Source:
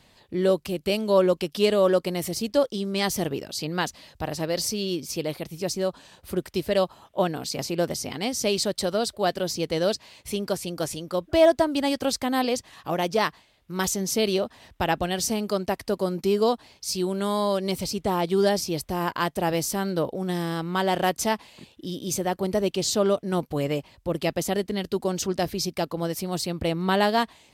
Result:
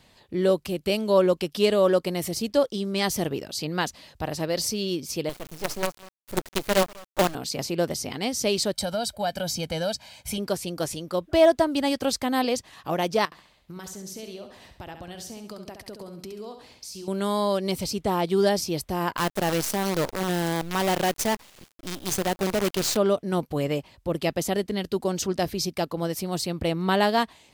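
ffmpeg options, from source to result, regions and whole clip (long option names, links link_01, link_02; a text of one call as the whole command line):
ffmpeg -i in.wav -filter_complex "[0:a]asettb=1/sr,asplit=3[link_01][link_02][link_03];[link_01]atrim=end=5.294[link_04];[link_02]atrim=start=5.29:end=7.35,asetpts=PTS-STARTPTS,afade=type=in:duration=0.004:curve=qsin,afade=type=out:start_time=2.056:duration=0.004:curve=qsin,agate=range=-33dB:threshold=-42dB:ratio=3:release=100:detection=peak,aecho=1:1:196:0.1,atrim=end_sample=90846,acrusher=bits=4:dc=4:mix=0:aa=0.000001[link_05];[link_03]atrim=start=7.346[link_06];[link_04][link_05]acrossfade=duration=0.004:curve1=hsin:curve2=qsin[link_07];[link_07][link_06]acrossfade=duration=0.004:curve1=qsin:curve2=hsin,asettb=1/sr,asplit=3[link_08][link_09][link_10];[link_08]atrim=end=8.734[link_11];[link_09]atrim=start=8.73:end=10.38,asetpts=PTS-STARTPTS,afade=type=in:duration=0.004:curve=qsin,afade=type=out:start_time=1.646:duration=0.004:curve=qsin,highshelf=frequency=9600:gain=4,aecho=1:1:1.3:0.79,atrim=end_sample=72765,acompressor=threshold=-25dB:ratio=2.5:attack=3.2:release=140:knee=1:detection=peak[link_12];[link_10]atrim=start=10.376[link_13];[link_11][link_12]acrossfade=duration=0.004:curve1=hsin:curve2=qsin[link_14];[link_14][link_13]acrossfade=duration=0.004:curve1=qsin:curve2=hsin,asettb=1/sr,asplit=3[link_15][link_16][link_17];[link_15]atrim=end=13.254[link_18];[link_16]atrim=start=13.25:end=17.08,asetpts=PTS-STARTPTS,afade=type=in:duration=0.004:curve=qsin,afade=type=out:start_time=3.826:duration=0.004:curve=qsin,acompressor=threshold=-36dB:ratio=10:attack=3.2:release=140:knee=1:detection=peak,aecho=1:1:68|136|204|272|340:0.398|0.167|0.0702|0.0295|0.0124,atrim=end_sample=168903[link_19];[link_17]atrim=start=17.076[link_20];[link_18][link_19]acrossfade=duration=0.004:curve1=hsin:curve2=qsin[link_21];[link_21][link_20]acrossfade=duration=0.004:curve1=qsin:curve2=hsin,asettb=1/sr,asplit=3[link_22][link_23][link_24];[link_22]atrim=end=19.174[link_25];[link_23]atrim=start=19.17:end=22.97,asetpts=PTS-STARTPTS,afade=type=in:duration=0.004:curve=qsin,afade=type=out:start_time=3.796:duration=0.004:curve=qsin,asoftclip=type=hard:threshold=-20dB,acrusher=bits=5:dc=4:mix=0:aa=0.000001[link_26];[link_24]atrim=start=22.966[link_27];[link_25][link_26]acrossfade=duration=0.004:curve1=hsin:curve2=qsin[link_28];[link_28][link_27]acrossfade=duration=0.004:curve1=qsin:curve2=hsin" out.wav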